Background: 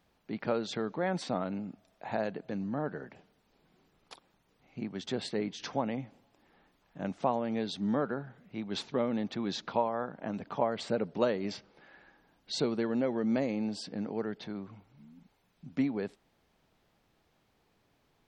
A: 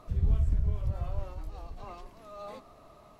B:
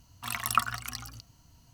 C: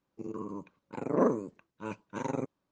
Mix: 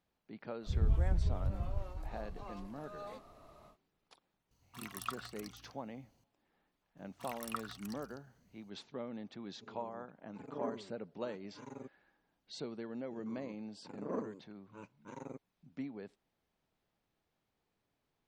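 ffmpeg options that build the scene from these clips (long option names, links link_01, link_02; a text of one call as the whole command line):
ffmpeg -i bed.wav -i cue0.wav -i cue1.wav -i cue2.wav -filter_complex "[2:a]asplit=2[link_01][link_02];[3:a]asplit=2[link_03][link_04];[0:a]volume=-12.5dB[link_05];[link_03]asplit=2[link_06][link_07];[link_07]adelay=4.3,afreqshift=-0.95[link_08];[link_06][link_08]amix=inputs=2:normalize=1[link_09];[1:a]atrim=end=3.19,asetpts=PTS-STARTPTS,volume=-4dB,afade=type=in:duration=0.1,afade=type=out:start_time=3.09:duration=0.1,adelay=590[link_10];[link_01]atrim=end=1.73,asetpts=PTS-STARTPTS,volume=-15dB,afade=type=in:duration=0.004:curve=hsin,afade=type=out:start_time=1.726:duration=0.004:curve=hsin,adelay=4510[link_11];[link_02]atrim=end=1.73,asetpts=PTS-STARTPTS,volume=-15.5dB,afade=type=in:duration=0.004:curve=hsin,afade=type=out:start_time=1.726:duration=0.004:curve=hsin,adelay=6970[link_12];[link_09]atrim=end=2.71,asetpts=PTS-STARTPTS,volume=-12.5dB,afade=type=in:duration=0.004:curve=hsin,afade=type=out:start_time=2.706:duration=0.004:curve=hsin,adelay=9420[link_13];[link_04]atrim=end=2.71,asetpts=PTS-STARTPTS,volume=-13.5dB,afade=type=in:duration=0.004:curve=hsin,afade=type=out:start_time=2.706:duration=0.004:curve=hsin,adelay=12920[link_14];[link_05][link_10][link_11][link_12][link_13][link_14]amix=inputs=6:normalize=0" out.wav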